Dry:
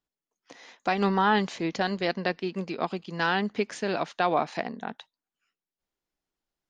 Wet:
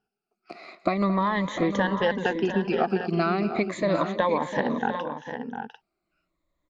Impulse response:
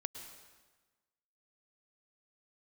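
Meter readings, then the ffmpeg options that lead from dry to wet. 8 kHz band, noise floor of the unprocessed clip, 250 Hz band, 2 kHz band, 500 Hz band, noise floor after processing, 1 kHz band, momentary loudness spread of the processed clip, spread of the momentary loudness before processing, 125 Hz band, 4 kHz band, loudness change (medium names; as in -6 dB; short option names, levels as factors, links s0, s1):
no reading, under -85 dBFS, +4.5 dB, 0.0 dB, +4.0 dB, -83 dBFS, +0.5 dB, 11 LU, 10 LU, +4.5 dB, -2.5 dB, +2.0 dB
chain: -filter_complex "[0:a]afftfilt=real='re*pow(10,19/40*sin(2*PI*(1.1*log(max(b,1)*sr/1024/100)/log(2)-(-0.38)*(pts-256)/sr)))':imag='im*pow(10,19/40*sin(2*PI*(1.1*log(max(b,1)*sr/1024/100)/log(2)-(-0.38)*(pts-256)/sr)))':win_size=1024:overlap=0.75,lowpass=f=1300:p=1,acompressor=threshold=0.0398:ratio=6,asplit=2[s0][s1];[s1]aecho=0:1:222|702|748:0.178|0.282|0.316[s2];[s0][s2]amix=inputs=2:normalize=0,volume=2.37"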